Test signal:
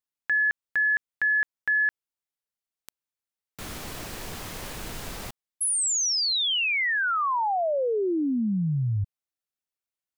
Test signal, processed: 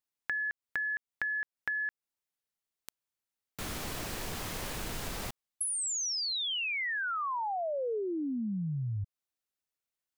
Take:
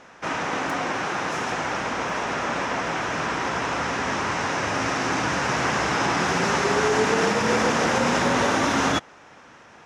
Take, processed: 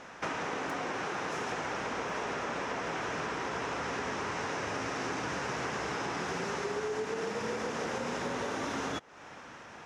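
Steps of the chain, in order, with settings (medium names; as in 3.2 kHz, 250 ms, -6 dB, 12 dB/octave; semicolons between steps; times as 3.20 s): dynamic bell 430 Hz, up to +6 dB, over -41 dBFS, Q 3.6; compression 10:1, threshold -32 dBFS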